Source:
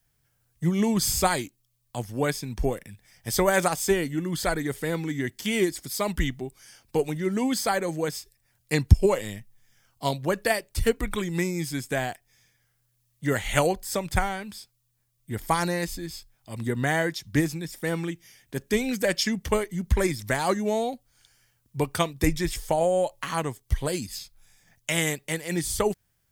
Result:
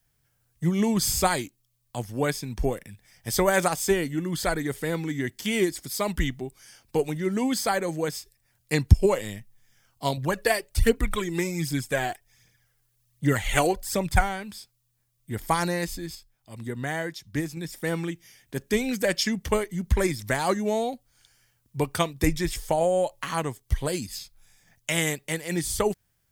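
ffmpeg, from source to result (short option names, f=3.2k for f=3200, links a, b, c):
-filter_complex "[0:a]asettb=1/sr,asplit=3[a][b][c];[a]atrim=end=10.174[d];[b]atrim=start=10.17:end=14.21,asetpts=PTS-STARTPTS,afade=t=in:d=0.004:c=qsin,afade=t=out:st=4.036:d=0.004:c=qsin,aphaser=in_gain=1:out_gain=1:delay=3:decay=0.5:speed=1.3:type=triangular[e];[c]atrim=start=14.206[f];[d][e]acrossfade=d=0.004:c1=hsin:c2=qsin[g];[g][f]acrossfade=d=0.004:c1=qsin:c2=hsin,asplit=3[h][i][j];[h]atrim=end=16.152[k];[i]atrim=start=16.148:end=17.572,asetpts=PTS-STARTPTS,volume=-5.5dB[l];[j]atrim=start=17.568[m];[k][l]acrossfade=d=0.004:c1=hsin:c2=hsin[n];[n][m]acrossfade=d=0.004:c1=hsin:c2=hsin"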